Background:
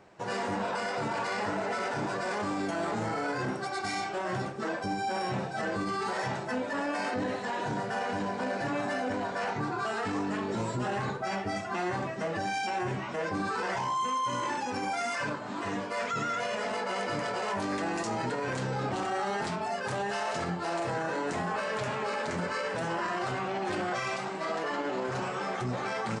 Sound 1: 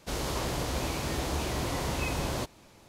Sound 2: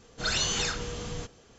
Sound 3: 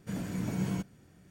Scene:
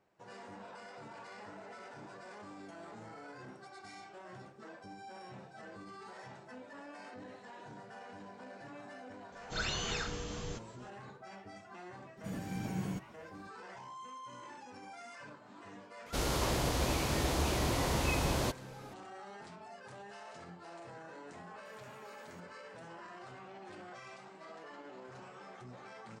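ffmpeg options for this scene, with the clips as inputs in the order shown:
ffmpeg -i bed.wav -i cue0.wav -i cue1.wav -i cue2.wav -filter_complex "[3:a]asplit=2[link_01][link_02];[0:a]volume=-18dB[link_03];[2:a]acrossover=split=3400[link_04][link_05];[link_05]acompressor=threshold=-37dB:ratio=4:attack=1:release=60[link_06];[link_04][link_06]amix=inputs=2:normalize=0[link_07];[link_02]highpass=1100[link_08];[link_07]atrim=end=1.58,asetpts=PTS-STARTPTS,volume=-5.5dB,afade=type=in:duration=0.004:curve=hsin,afade=type=out:start_time=1.576:duration=0.004:curve=hsin,adelay=9320[link_09];[link_01]atrim=end=1.3,asetpts=PTS-STARTPTS,volume=-5.5dB,afade=type=in:duration=0.004:curve=hsin,afade=type=out:start_time=1.296:duration=0.004:curve=hsin,adelay=12170[link_10];[1:a]atrim=end=2.88,asetpts=PTS-STARTPTS,volume=-0.5dB,afade=type=in:duration=0.004:curve=hsin,afade=type=out:start_time=2.876:duration=0.004:curve=hsin,adelay=16060[link_11];[link_08]atrim=end=1.3,asetpts=PTS-STARTPTS,volume=-16.5dB,afade=type=in:duration=0.004:curve=hsin,afade=type=out:start_time=1.296:duration=0.004:curve=hsin,adelay=21580[link_12];[link_03][link_09][link_10][link_11][link_12]amix=inputs=5:normalize=0" out.wav

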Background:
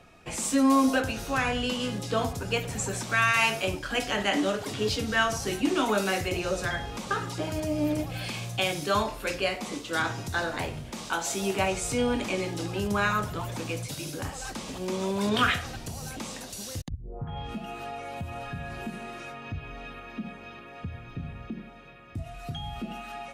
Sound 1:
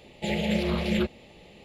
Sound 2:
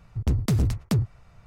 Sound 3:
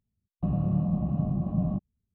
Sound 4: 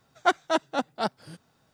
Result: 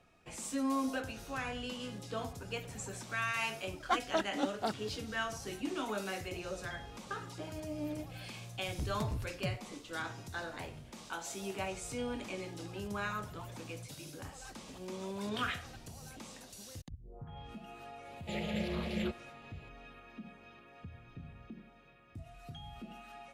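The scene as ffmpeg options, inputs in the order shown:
ffmpeg -i bed.wav -i cue0.wav -i cue1.wav -i cue2.wav -i cue3.wav -filter_complex "[0:a]volume=-12dB[link_01];[4:a]aphaser=in_gain=1:out_gain=1:delay=4:decay=0.69:speed=2:type=sinusoidal,atrim=end=1.73,asetpts=PTS-STARTPTS,volume=-11dB,afade=type=in:duration=0.004:curve=hsin,afade=type=out:start_time=1.726:duration=0.004:curve=hsin,adelay=3640[link_02];[2:a]atrim=end=1.46,asetpts=PTS-STARTPTS,volume=-15.5dB,afade=type=in:duration=0.004:curve=hsin,afade=type=out:start_time=1.456:duration=0.004:curve=hsin,adelay=8520[link_03];[1:a]atrim=end=1.64,asetpts=PTS-STARTPTS,volume=-10dB,afade=type=in:duration=0.004:curve=hsin,afade=type=out:start_time=1.636:duration=0.004:curve=hsin,adelay=18050[link_04];[link_01][link_02][link_03][link_04]amix=inputs=4:normalize=0" out.wav

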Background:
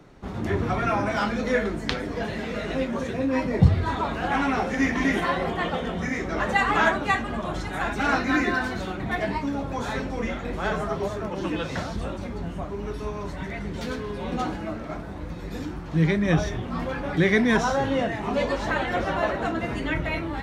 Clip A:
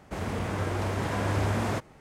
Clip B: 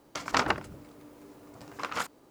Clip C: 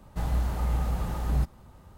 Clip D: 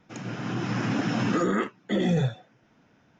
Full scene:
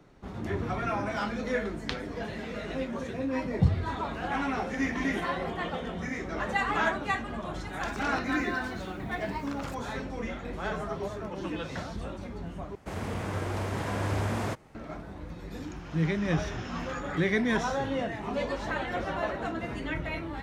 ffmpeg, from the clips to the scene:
ffmpeg -i bed.wav -i cue0.wav -i cue1.wav -i cue2.wav -i cue3.wav -filter_complex "[0:a]volume=-6.5dB[link_01];[2:a]acompressor=threshold=-35dB:ratio=6:attack=3.2:release=140:knee=1:detection=peak[link_02];[4:a]highpass=830[link_03];[link_01]asplit=2[link_04][link_05];[link_04]atrim=end=12.754[link_06];[1:a]atrim=end=2,asetpts=PTS-STARTPTS,volume=-2.5dB[link_07];[link_05]atrim=start=14.746[link_08];[link_02]atrim=end=2.3,asetpts=PTS-STARTPTS,volume=-2.5dB,afade=type=in:duration=0.004:curve=hsin,afade=type=out:start_time=2.296:duration=0.004:curve=hsin,adelay=7680[link_09];[link_03]atrim=end=3.19,asetpts=PTS-STARTPTS,volume=-9dB,afade=type=in:duration=0.004:curve=hsin,afade=type=out:start_time=3.186:duration=0.004:curve=hsin,adelay=686196S[link_10];[link_06][link_07]acrossfade=duration=0.004:curve1=hsin:curve2=hsin[link_11];[link_11][link_08]acrossfade=duration=0.004:curve1=hsin:curve2=hsin[link_12];[link_12][link_09][link_10]amix=inputs=3:normalize=0" out.wav

